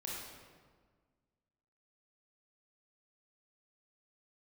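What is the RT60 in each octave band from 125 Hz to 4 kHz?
2.0, 1.9, 1.7, 1.5, 1.3, 1.0 s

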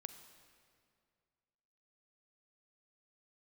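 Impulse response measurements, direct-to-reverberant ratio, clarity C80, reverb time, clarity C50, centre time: 9.0 dB, 10.5 dB, 2.2 s, 9.5 dB, 21 ms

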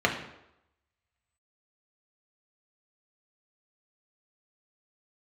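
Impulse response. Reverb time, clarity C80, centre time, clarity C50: 0.85 s, 10.5 dB, 23 ms, 7.5 dB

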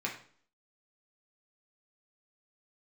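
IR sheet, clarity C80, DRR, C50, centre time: 12.0 dB, -2.5 dB, 8.0 dB, 22 ms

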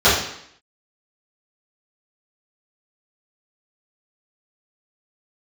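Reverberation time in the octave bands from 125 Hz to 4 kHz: 0.60, 0.70, 0.65, 0.70, 0.70, 0.70 s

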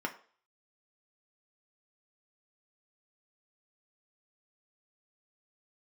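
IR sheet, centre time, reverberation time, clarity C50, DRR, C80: 10 ms, 0.45 s, 13.5 dB, 1.5 dB, 17.5 dB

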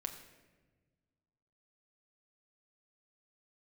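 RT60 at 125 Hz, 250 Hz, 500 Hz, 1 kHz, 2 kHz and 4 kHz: 2.2, 2.0, 1.6, 1.1, 1.1, 0.85 s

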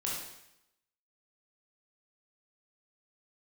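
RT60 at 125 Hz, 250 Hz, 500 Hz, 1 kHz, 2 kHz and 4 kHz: 0.80, 0.85, 0.80, 0.80, 0.85, 0.80 s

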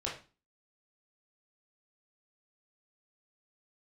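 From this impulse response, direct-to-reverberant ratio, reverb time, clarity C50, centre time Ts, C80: -4.5 dB, 0.35 s, 7.0 dB, 30 ms, 12.5 dB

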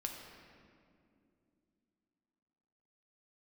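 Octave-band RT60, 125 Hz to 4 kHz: 3.2, 3.8, 3.0, 2.1, 1.8, 1.4 s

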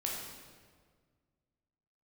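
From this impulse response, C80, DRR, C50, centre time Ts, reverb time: 3.0 dB, -3.0 dB, 1.0 dB, 76 ms, 1.7 s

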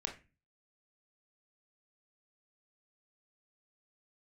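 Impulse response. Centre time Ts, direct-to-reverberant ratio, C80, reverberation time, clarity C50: 16 ms, 2.0 dB, 16.5 dB, 0.30 s, 10.5 dB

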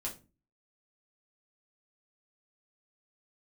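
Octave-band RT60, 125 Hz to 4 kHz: 0.50, 0.50, 0.35, 0.25, 0.25, 0.25 s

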